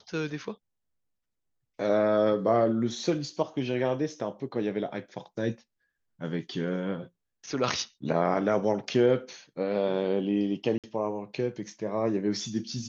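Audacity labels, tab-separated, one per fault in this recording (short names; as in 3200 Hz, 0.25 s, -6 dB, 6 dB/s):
10.780000	10.840000	gap 57 ms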